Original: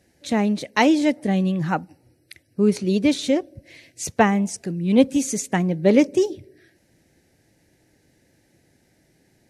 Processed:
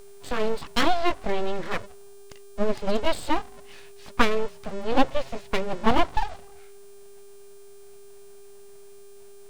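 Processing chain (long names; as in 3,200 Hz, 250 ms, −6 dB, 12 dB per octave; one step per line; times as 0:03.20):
pitch shifter swept by a sawtooth +3 semitones, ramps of 1,245 ms
Chebyshev band-pass filter 190–4,200 Hz, order 4
hum with harmonics 400 Hz, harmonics 22, −44 dBFS −6 dB per octave
full-wave rectification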